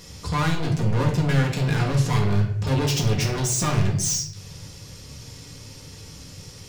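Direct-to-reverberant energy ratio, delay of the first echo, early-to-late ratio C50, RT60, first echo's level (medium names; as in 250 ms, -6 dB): -1.0 dB, no echo, 7.0 dB, 0.70 s, no echo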